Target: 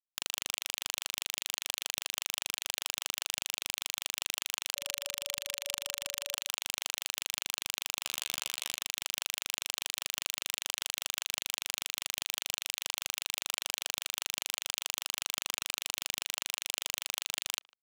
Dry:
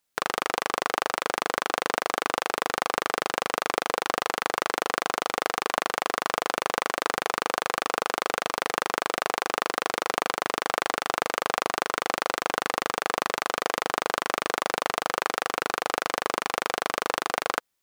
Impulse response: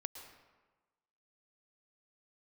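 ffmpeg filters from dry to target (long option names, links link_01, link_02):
-filter_complex "[0:a]aderivative,alimiter=limit=-15.5dB:level=0:latency=1:release=298,highpass=frequency=520:width_type=q:width=0.5412,highpass=frequency=520:width_type=q:width=1.307,lowpass=frequency=3400:width_type=q:width=0.5176,lowpass=frequency=3400:width_type=q:width=0.7071,lowpass=frequency=3400:width_type=q:width=1.932,afreqshift=-78,asoftclip=type=tanh:threshold=-39dB,aexciter=amount=6.2:drive=7.7:freq=2600,acrusher=bits=4:mix=0:aa=0.5,asettb=1/sr,asplit=3[link_01][link_02][link_03];[link_01]atrim=end=4.764[link_04];[link_02]atrim=start=4.76:end=6.35,asetpts=PTS-STARTPTS,afade=type=in:duration=0.004:curve=qsin,afade=type=out:start_time=1.586:duration=0.004:curve=qsin,aeval=exprs='val(0)+0.000794*sin(2*PI*570*n/s)':channel_layout=same[link_05];[link_03]atrim=start=6.346[link_06];[link_04][link_05]acrossfade=duration=0.004:curve1=hsin:curve2=qsin[link_07];[link_07][link_06]acrossfade=duration=0.004:curve1=qsin:curve2=hsin,asplit=3[link_08][link_09][link_10];[link_08]afade=type=out:start_time=8.06:duration=0.02[link_11];[link_09]asplit=2[link_12][link_13];[link_13]adelay=15,volume=-11dB[link_14];[link_12][link_14]amix=inputs=2:normalize=0,afade=type=in:start_time=8.06:duration=0.02,afade=type=out:start_time=8.74:duration=0.02[link_15];[link_10]afade=type=in:start_time=8.74:duration=0.02[link_16];[link_11][link_15][link_16]amix=inputs=3:normalize=0,asplit=2[link_17][link_18];[link_18]adelay=150,highpass=300,lowpass=3400,asoftclip=type=hard:threshold=-28.5dB,volume=-24dB[link_19];[link_17][link_19]amix=inputs=2:normalize=0,volume=6dB"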